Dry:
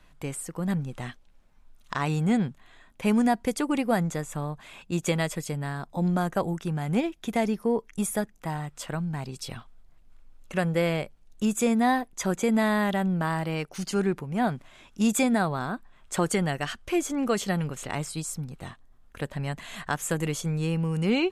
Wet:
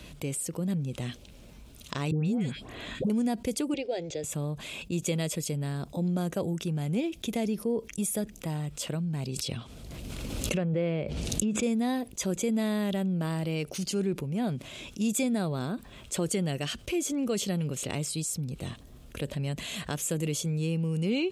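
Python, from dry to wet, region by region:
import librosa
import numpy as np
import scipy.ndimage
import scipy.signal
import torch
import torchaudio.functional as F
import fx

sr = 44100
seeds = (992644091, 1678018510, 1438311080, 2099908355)

y = fx.chain(x, sr, fx.high_shelf(hz=5000.0, db=-7.0),
    fx.dispersion(late='highs', ms=147.0, hz=1200.0),
    fx.band_squash(depth_pct=100), at=(2.11, 3.1))
y = fx.chain(y, sr, fx.lowpass(hz=5000.0, slope=24),
    fx.peak_eq(hz=200.0, db=-13.5, octaves=0.66),
    fx.fixed_phaser(hz=480.0, stages=4), at=(3.74, 4.24))
y = fx.chain(y, sr, fx.env_lowpass_down(base_hz=2100.0, full_db=-24.0),
    fx.highpass(hz=54.0, slope=12),
    fx.pre_swell(db_per_s=41.0), at=(9.36, 11.63))
y = scipy.signal.sosfilt(scipy.signal.butter(4, 41.0, 'highpass', fs=sr, output='sos'), y)
y = fx.band_shelf(y, sr, hz=1200.0, db=-10.5, octaves=1.7)
y = fx.env_flatten(y, sr, amount_pct=50)
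y = y * librosa.db_to_amplitude(-5.5)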